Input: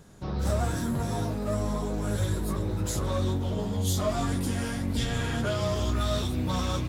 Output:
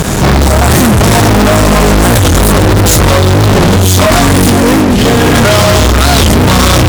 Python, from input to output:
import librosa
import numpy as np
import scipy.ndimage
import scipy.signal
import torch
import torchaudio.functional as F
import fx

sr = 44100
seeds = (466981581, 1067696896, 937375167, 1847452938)

y = fx.peak_eq(x, sr, hz=380.0, db=12.0, octaves=2.0, at=(4.51, 5.35))
y = fx.over_compress(y, sr, threshold_db=-29.0, ratio=-0.5)
y = fx.fuzz(y, sr, gain_db=52.0, gate_db=-53.0)
y = fx.record_warp(y, sr, rpm=45.0, depth_cents=250.0)
y = y * librosa.db_to_amplitude(8.0)